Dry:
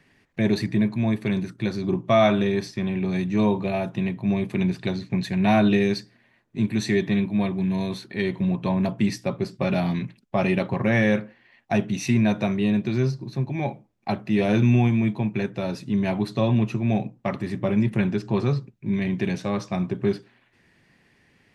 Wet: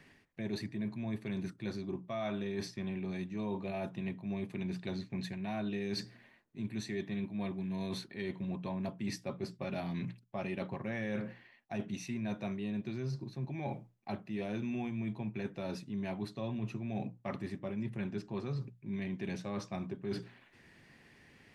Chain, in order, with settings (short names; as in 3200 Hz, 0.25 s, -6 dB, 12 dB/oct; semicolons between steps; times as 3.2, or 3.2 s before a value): notches 60/120/180 Hz; reverse; compressor 5:1, threshold -37 dBFS, peak gain reduction 21 dB; reverse